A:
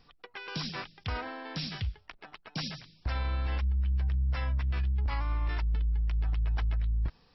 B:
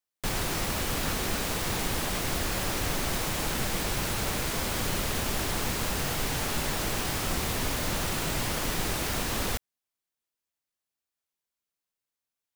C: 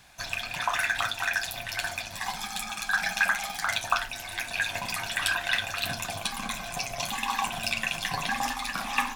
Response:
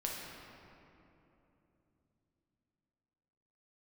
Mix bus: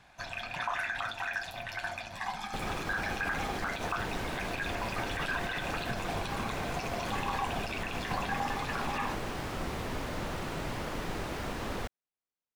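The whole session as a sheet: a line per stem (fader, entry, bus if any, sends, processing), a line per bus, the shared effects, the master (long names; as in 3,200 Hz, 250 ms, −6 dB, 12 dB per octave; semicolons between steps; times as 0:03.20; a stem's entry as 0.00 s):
muted
−2.0 dB, 2.30 s, bus A, no send, no processing
+1.0 dB, 0.00 s, bus A, no send, no processing
bus A: 0.0 dB, low-shelf EQ 210 Hz −4.5 dB; brickwall limiter −19.5 dBFS, peak gain reduction 10.5 dB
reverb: not used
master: low-pass filter 1,400 Hz 6 dB per octave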